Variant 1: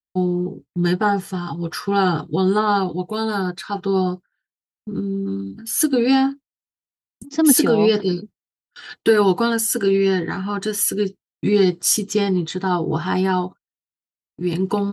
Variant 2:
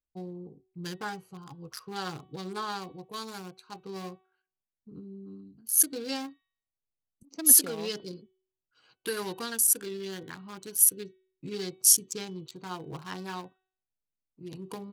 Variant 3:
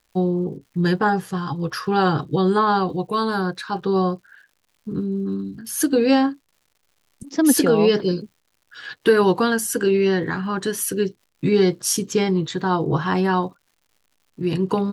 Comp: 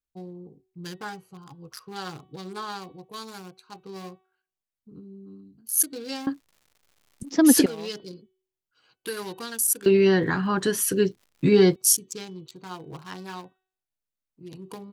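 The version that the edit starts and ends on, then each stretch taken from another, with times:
2
0:06.27–0:07.66: punch in from 3
0:09.86–0:11.76: punch in from 3
not used: 1

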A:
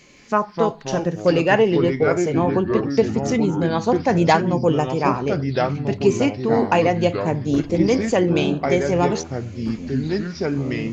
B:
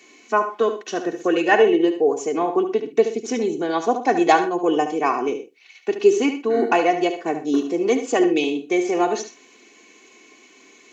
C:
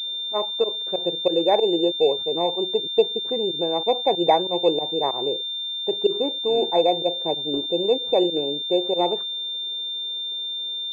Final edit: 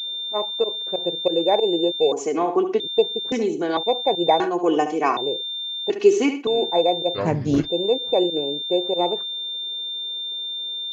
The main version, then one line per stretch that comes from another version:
C
0:02.12–0:02.80: punch in from B
0:03.32–0:03.77: punch in from B
0:04.40–0:05.17: punch in from B
0:05.90–0:06.47: punch in from B
0:07.17–0:07.66: punch in from A, crossfade 0.06 s

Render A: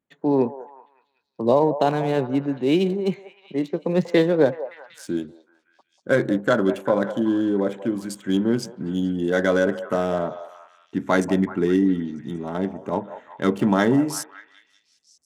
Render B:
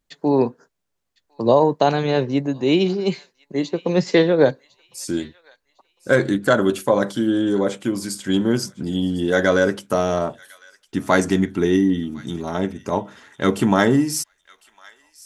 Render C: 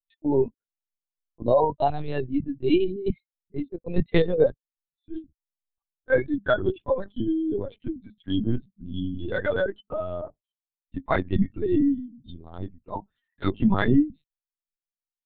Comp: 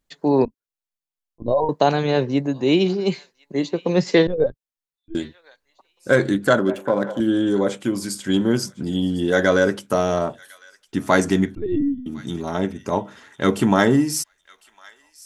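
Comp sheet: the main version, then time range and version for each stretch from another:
B
0:00.45–0:01.69: punch in from C
0:04.27–0:05.15: punch in from C
0:06.59–0:07.20: punch in from A
0:11.55–0:12.06: punch in from C

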